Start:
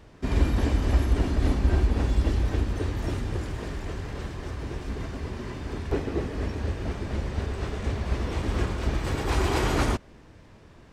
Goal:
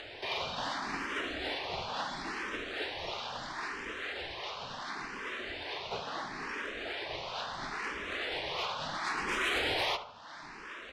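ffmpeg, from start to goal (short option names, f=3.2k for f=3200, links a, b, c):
-filter_complex "[0:a]highpass=940,acompressor=mode=upward:threshold=-39dB:ratio=2.5,asplit=2[a][b];[b]acrusher=samples=15:mix=1:aa=0.000001:lfo=1:lforange=24:lforate=2.4,volume=-3dB[c];[a][c]amix=inputs=2:normalize=0,lowpass=f=4k:t=q:w=1.6,asoftclip=type=tanh:threshold=-26.5dB,asplit=2[d][e];[e]adelay=72,lowpass=f=2.2k:p=1,volume=-10dB,asplit=2[f][g];[g]adelay=72,lowpass=f=2.2k:p=1,volume=0.51,asplit=2[h][i];[i]adelay=72,lowpass=f=2.2k:p=1,volume=0.51,asplit=2[j][k];[k]adelay=72,lowpass=f=2.2k:p=1,volume=0.51,asplit=2[l][m];[m]adelay=72,lowpass=f=2.2k:p=1,volume=0.51,asplit=2[n][o];[o]adelay=72,lowpass=f=2.2k:p=1,volume=0.51[p];[d][f][h][j][l][n][p]amix=inputs=7:normalize=0,asplit=2[q][r];[r]afreqshift=0.73[s];[q][s]amix=inputs=2:normalize=1,volume=3dB"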